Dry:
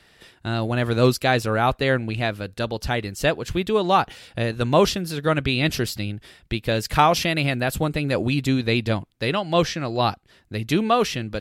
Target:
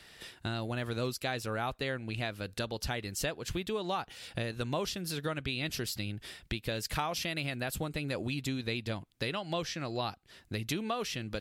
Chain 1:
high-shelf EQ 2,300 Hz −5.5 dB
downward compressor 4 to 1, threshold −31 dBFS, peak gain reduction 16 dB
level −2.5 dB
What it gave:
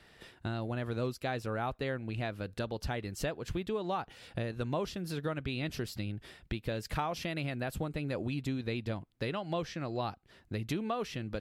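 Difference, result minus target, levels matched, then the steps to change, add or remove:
4,000 Hz band −6.0 dB
change: high-shelf EQ 2,300 Hz +6 dB

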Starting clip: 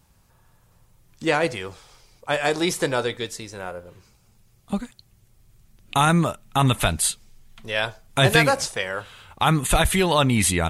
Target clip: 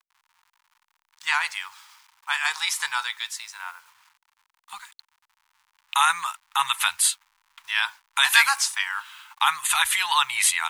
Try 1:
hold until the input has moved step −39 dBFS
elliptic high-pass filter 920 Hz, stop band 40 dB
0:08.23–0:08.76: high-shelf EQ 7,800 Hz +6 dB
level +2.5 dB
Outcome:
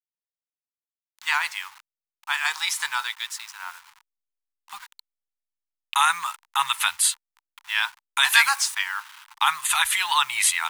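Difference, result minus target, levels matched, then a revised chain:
hold until the input has moved: distortion +11 dB
hold until the input has moved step −50 dBFS
elliptic high-pass filter 920 Hz, stop band 40 dB
0:08.23–0:08.76: high-shelf EQ 7,800 Hz +6 dB
level +2.5 dB

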